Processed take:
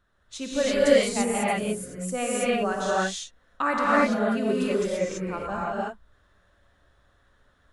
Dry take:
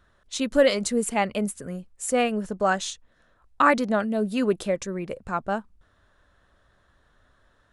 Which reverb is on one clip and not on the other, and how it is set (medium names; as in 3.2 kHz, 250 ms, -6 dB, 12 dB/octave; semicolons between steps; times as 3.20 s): gated-style reverb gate 360 ms rising, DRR -7.5 dB; trim -8 dB